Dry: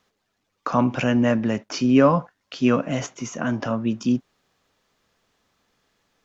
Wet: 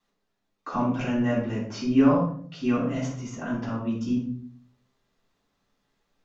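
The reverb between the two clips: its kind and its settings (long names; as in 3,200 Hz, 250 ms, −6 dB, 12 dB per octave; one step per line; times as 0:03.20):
rectangular room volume 540 cubic metres, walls furnished, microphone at 9.1 metres
level −18 dB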